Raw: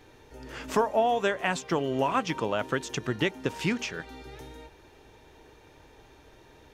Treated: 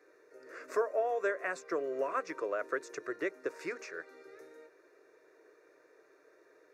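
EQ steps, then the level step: HPF 260 Hz 24 dB/oct; LPF 3500 Hz 6 dB/oct; fixed phaser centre 850 Hz, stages 6; -3.5 dB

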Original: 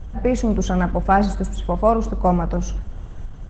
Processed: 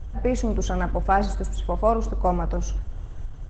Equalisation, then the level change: tone controls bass +3 dB, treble +2 dB; bell 190 Hz -10 dB 0.41 oct; -4.0 dB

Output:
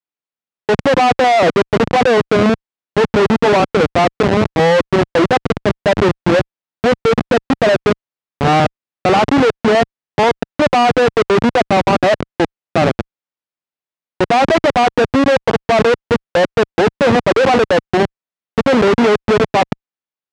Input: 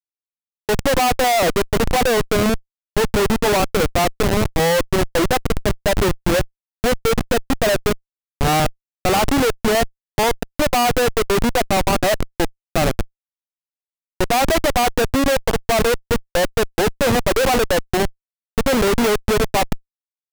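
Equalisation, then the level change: HPF 120 Hz 12 dB/oct; LPF 3400 Hz 6 dB/oct; air absorption 85 m; +6.0 dB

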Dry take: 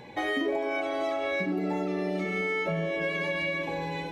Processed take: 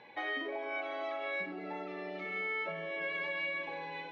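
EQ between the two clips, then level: HPF 1500 Hz 6 dB/oct; Bessel low-pass 4400 Hz, order 2; air absorption 210 m; 0.0 dB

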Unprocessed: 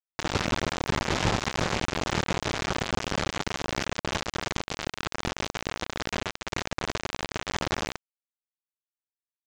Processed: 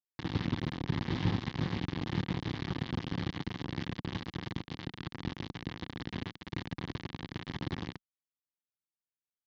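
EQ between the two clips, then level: speaker cabinet 200–4300 Hz, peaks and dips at 210 Hz -5 dB, 420 Hz -7 dB, 610 Hz -10 dB, 1400 Hz -8 dB, 2500 Hz -7 dB; tilt -3.5 dB/oct; bell 700 Hz -12 dB 2.4 oct; 0.0 dB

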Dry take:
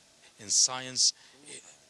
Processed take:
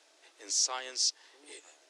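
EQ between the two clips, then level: Chebyshev high-pass 300 Hz, order 6; high shelf 5800 Hz -8 dB; 0.0 dB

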